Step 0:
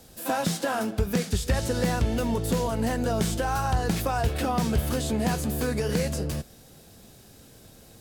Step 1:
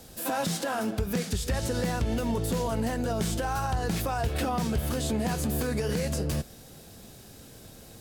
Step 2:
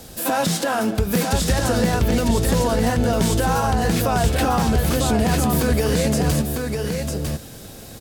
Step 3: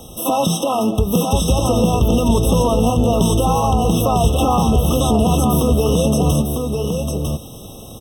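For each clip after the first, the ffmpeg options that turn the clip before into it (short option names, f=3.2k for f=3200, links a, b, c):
-af "alimiter=limit=-22.5dB:level=0:latency=1:release=131,volume=2.5dB"
-af "aecho=1:1:951:0.596,volume=8.5dB"
-af "afftfilt=real='re*eq(mod(floor(b*sr/1024/1300),2),0)':imag='im*eq(mod(floor(b*sr/1024/1300),2),0)':win_size=1024:overlap=0.75,volume=4dB"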